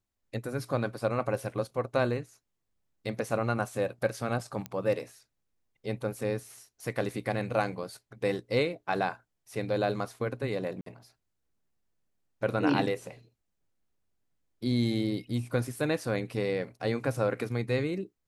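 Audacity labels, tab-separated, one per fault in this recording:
4.660000	4.660000	pop -20 dBFS
10.810000	10.860000	dropout 53 ms

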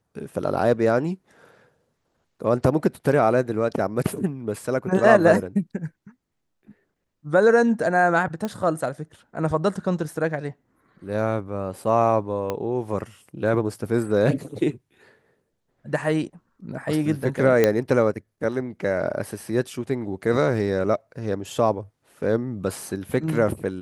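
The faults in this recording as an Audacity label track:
8.450000	8.450000	pop -15 dBFS
12.500000	12.500000	pop -13 dBFS
17.640000	17.640000	pop -5 dBFS

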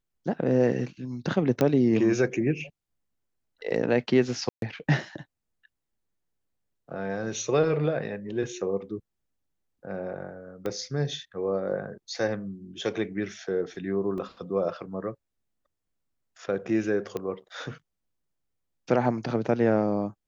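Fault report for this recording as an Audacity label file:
1.610000	1.610000	pop -11 dBFS
4.490000	4.620000	dropout 132 ms
10.660000	10.660000	pop -19 dBFS
14.180000	14.180000	dropout 2.4 ms
17.170000	17.170000	pop -19 dBFS

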